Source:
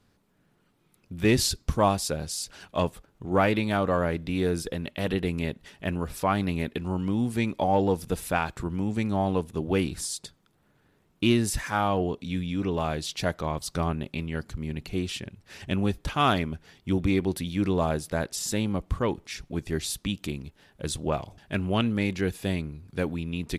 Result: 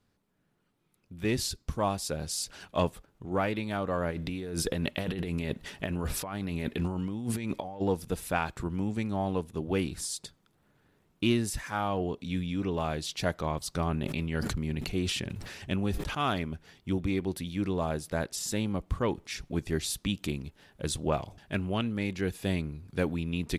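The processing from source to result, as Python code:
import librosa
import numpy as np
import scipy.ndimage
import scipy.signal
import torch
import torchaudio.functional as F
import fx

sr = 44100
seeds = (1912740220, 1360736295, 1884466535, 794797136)

y = fx.over_compress(x, sr, threshold_db=-33.0, ratio=-1.0, at=(4.1, 7.8), fade=0.02)
y = fx.sustainer(y, sr, db_per_s=32.0, at=(13.87, 16.15))
y = fx.rider(y, sr, range_db=4, speed_s=0.5)
y = y * librosa.db_to_amplitude(-3.5)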